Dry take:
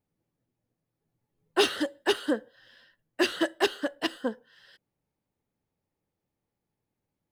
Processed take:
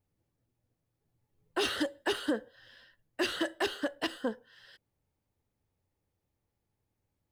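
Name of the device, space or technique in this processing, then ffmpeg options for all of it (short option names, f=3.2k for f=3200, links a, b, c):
car stereo with a boomy subwoofer: -af "lowshelf=f=120:t=q:w=1.5:g=6.5,alimiter=limit=-20dB:level=0:latency=1:release=34"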